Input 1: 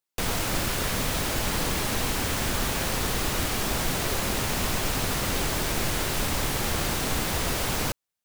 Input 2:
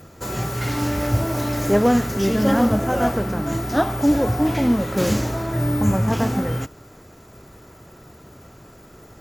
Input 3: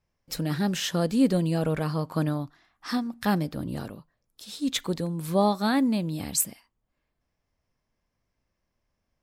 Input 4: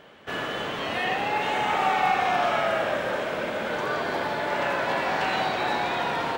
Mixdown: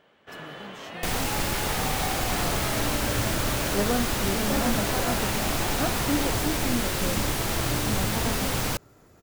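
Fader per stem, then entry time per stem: -0.5, -10.0, -19.0, -10.5 dB; 0.85, 2.05, 0.00, 0.00 s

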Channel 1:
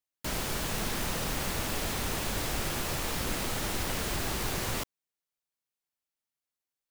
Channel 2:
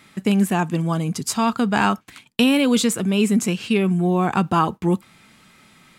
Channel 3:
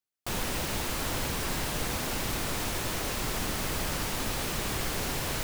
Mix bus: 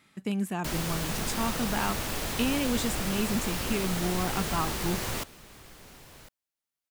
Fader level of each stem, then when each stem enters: 0.0, -12.0, -19.0 dB; 0.40, 0.00, 0.85 s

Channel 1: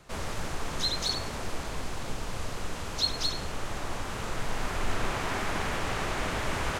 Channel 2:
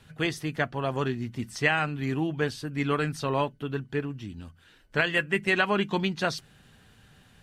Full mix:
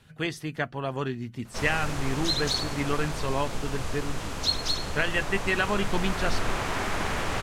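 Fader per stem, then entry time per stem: +2.0, -2.0 dB; 1.45, 0.00 s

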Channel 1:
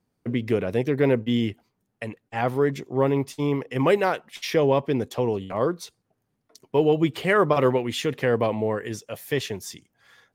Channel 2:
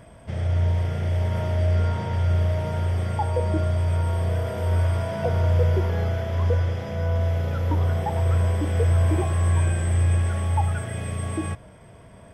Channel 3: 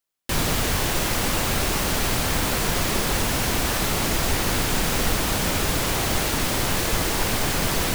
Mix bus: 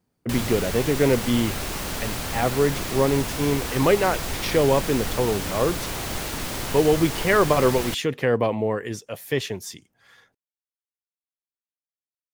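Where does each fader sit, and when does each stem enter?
+1.0 dB, off, -6.5 dB; 0.00 s, off, 0.00 s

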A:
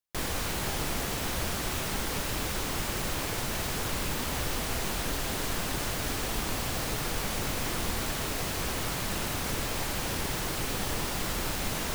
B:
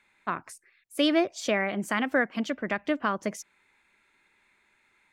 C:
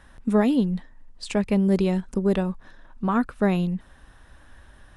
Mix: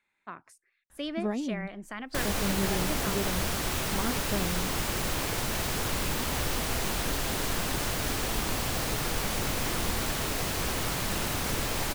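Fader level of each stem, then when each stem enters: +1.5, -11.5, -11.5 dB; 2.00, 0.00, 0.90 s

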